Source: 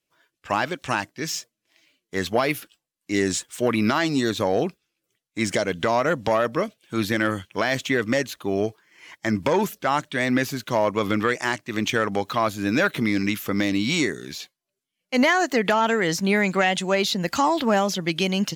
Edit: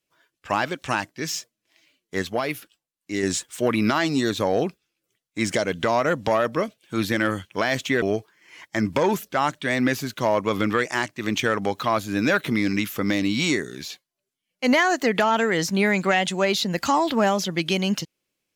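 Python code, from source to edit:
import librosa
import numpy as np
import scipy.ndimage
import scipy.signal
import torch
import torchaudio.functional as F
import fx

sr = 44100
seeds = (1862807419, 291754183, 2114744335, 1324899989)

y = fx.edit(x, sr, fx.clip_gain(start_s=2.22, length_s=1.01, db=-4.0),
    fx.cut(start_s=8.02, length_s=0.5), tone=tone)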